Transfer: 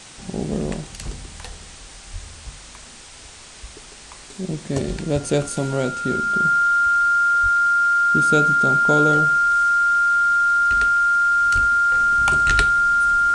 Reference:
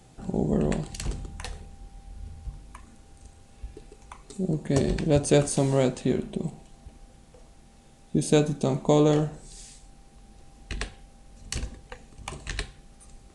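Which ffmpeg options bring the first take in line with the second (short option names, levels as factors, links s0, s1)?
-filter_complex "[0:a]bandreject=f=1400:w=30,asplit=3[s0][s1][s2];[s0]afade=t=out:st=2.12:d=0.02[s3];[s1]highpass=f=140:w=0.5412,highpass=f=140:w=1.3066,afade=t=in:st=2.12:d=0.02,afade=t=out:st=2.24:d=0.02[s4];[s2]afade=t=in:st=2.24:d=0.02[s5];[s3][s4][s5]amix=inputs=3:normalize=0,asplit=3[s6][s7][s8];[s6]afade=t=out:st=7.42:d=0.02[s9];[s7]highpass=f=140:w=0.5412,highpass=f=140:w=1.3066,afade=t=in:st=7.42:d=0.02,afade=t=out:st=7.54:d=0.02[s10];[s8]afade=t=in:st=7.54:d=0.02[s11];[s9][s10][s11]amix=inputs=3:normalize=0,asplit=3[s12][s13][s14];[s12]afade=t=out:st=11.54:d=0.02[s15];[s13]highpass=f=140:w=0.5412,highpass=f=140:w=1.3066,afade=t=in:st=11.54:d=0.02,afade=t=out:st=11.66:d=0.02[s16];[s14]afade=t=in:st=11.66:d=0.02[s17];[s15][s16][s17]amix=inputs=3:normalize=0,afwtdn=0.011,asetnsamples=n=441:p=0,asendcmd='11.94 volume volume -10.5dB',volume=1"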